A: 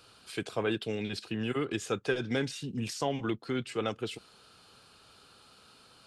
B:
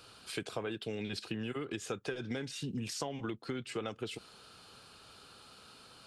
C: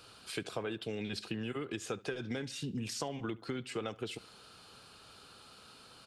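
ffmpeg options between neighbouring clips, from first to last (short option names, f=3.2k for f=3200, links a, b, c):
-af "acompressor=threshold=-36dB:ratio=12,volume=2dB"
-filter_complex "[0:a]asplit=2[a][b];[b]adelay=71,lowpass=f=4.8k:p=1,volume=-21.5dB,asplit=2[c][d];[d]adelay=71,lowpass=f=4.8k:p=1,volume=0.47,asplit=2[e][f];[f]adelay=71,lowpass=f=4.8k:p=1,volume=0.47[g];[a][c][e][g]amix=inputs=4:normalize=0"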